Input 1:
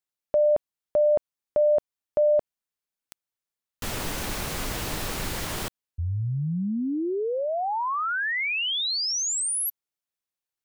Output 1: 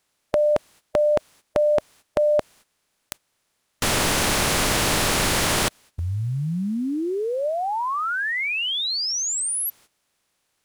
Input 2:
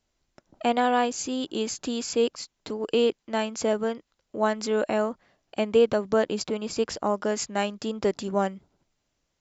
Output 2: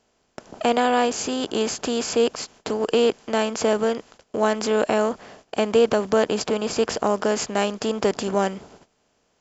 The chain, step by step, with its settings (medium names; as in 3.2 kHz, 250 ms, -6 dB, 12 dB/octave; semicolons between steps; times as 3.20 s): spectral levelling over time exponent 0.6; gate -48 dBFS, range -15 dB; trim +1 dB